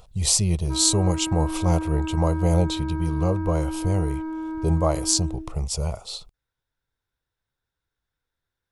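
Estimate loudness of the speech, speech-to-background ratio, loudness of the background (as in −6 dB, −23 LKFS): −23.5 LKFS, 7.5 dB, −31.0 LKFS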